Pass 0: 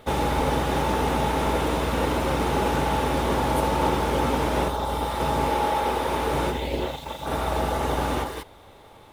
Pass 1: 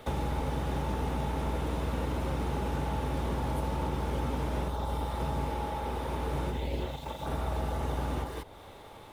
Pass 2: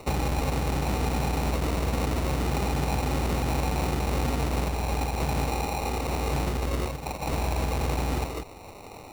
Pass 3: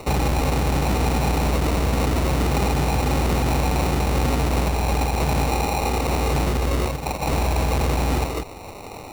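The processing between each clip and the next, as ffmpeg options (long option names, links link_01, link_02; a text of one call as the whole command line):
ffmpeg -i in.wav -filter_complex "[0:a]acrossover=split=190|1100[link_01][link_02][link_03];[link_01]acompressor=threshold=-30dB:ratio=4[link_04];[link_02]acompressor=threshold=-38dB:ratio=4[link_05];[link_03]acompressor=threshold=-47dB:ratio=4[link_06];[link_04][link_05][link_06]amix=inputs=3:normalize=0" out.wav
ffmpeg -i in.wav -af "acrusher=samples=27:mix=1:aa=0.000001,volume=5dB" out.wav
ffmpeg -i in.wav -af "volume=22.5dB,asoftclip=hard,volume=-22.5dB,volume=7dB" out.wav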